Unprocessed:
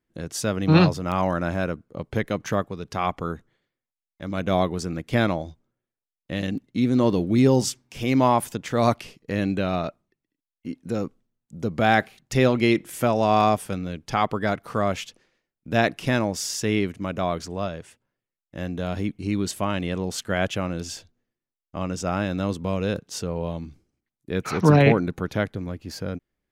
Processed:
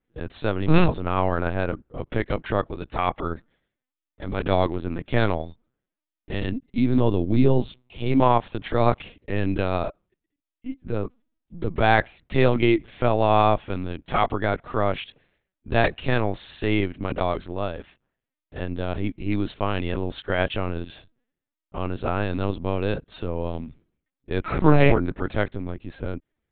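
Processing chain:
0:06.99–0:08.20: parametric band 1,700 Hz −8.5 dB 0.88 octaves
linear-prediction vocoder at 8 kHz pitch kept
level +1 dB

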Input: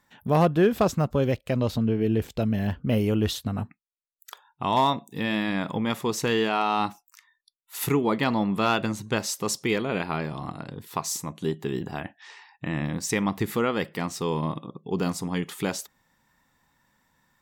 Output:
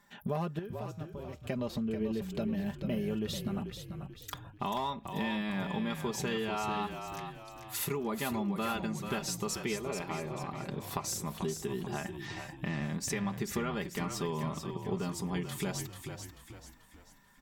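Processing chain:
comb filter 5 ms, depth 67%
downward compressor 4 to 1, threshold −34 dBFS, peak gain reduction 18.5 dB
0:00.59–0:01.37: tuned comb filter 160 Hz, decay 1.2 s, mix 70%
0:09.76–0:10.67: loudspeaker in its box 120–4,400 Hz, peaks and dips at 210 Hz −9 dB, 1,500 Hz −7 dB, 3,100 Hz −8 dB
echo with shifted repeats 438 ms, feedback 43%, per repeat −39 Hz, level −7.5 dB

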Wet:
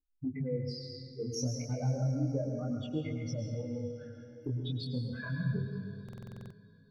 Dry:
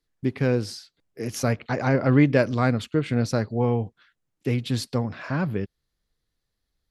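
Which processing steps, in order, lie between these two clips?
expanding power law on the bin magnitudes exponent 3.4
0:01.66–0:02.59: all-pass dispersion highs, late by 60 ms, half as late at 2,800 Hz
downward compressor, threshold −31 dBFS, peak gain reduction 16 dB
on a send: feedback delay with all-pass diffusion 538 ms, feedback 40%, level −15 dB
on the sum: dense smooth reverb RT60 1.3 s, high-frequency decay 0.85×, pre-delay 95 ms, DRR 3 dB
chorus effect 0.3 Hz, delay 19 ms, depth 5.3 ms
buffer that repeats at 0:06.04, samples 2,048, times 9

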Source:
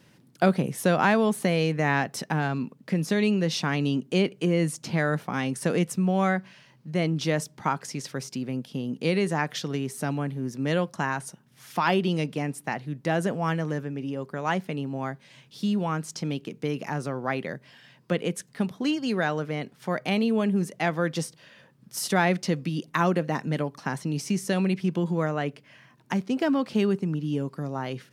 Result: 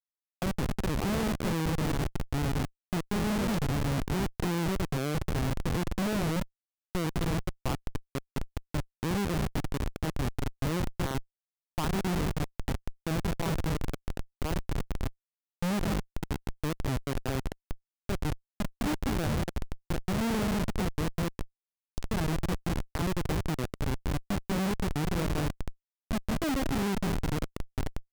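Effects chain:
spectral magnitudes quantised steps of 15 dB
elliptic low-pass filter 8,100 Hz, stop band 40 dB
brickwall limiter −16.5 dBFS, peak gain reduction 7.5 dB
delay that swaps between a low-pass and a high-pass 210 ms, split 900 Hz, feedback 57%, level −4 dB
comparator with hysteresis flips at −23.5 dBFS
wow of a warped record 45 rpm, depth 250 cents

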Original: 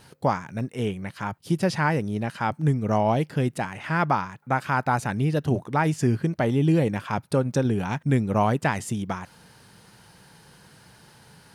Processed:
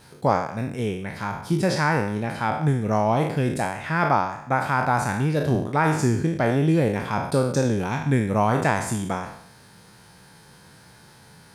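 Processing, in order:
peak hold with a decay on every bin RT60 0.71 s
notch filter 2,900 Hz, Q 12

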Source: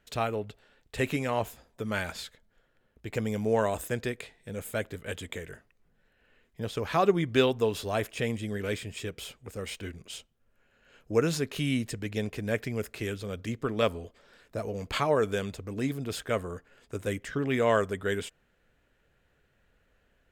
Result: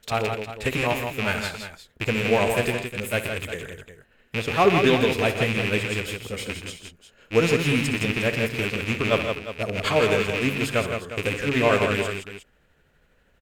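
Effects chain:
loose part that buzzes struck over −36 dBFS, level −20 dBFS
time stretch by overlap-add 0.66×, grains 162 ms
multi-tap delay 63/122/164/356 ms −13/−13.5/−6/−12.5 dB
level +6 dB

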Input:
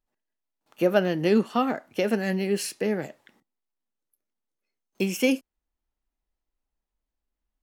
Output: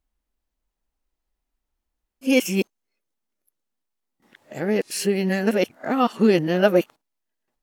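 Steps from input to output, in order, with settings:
played backwards from end to start
level +4 dB

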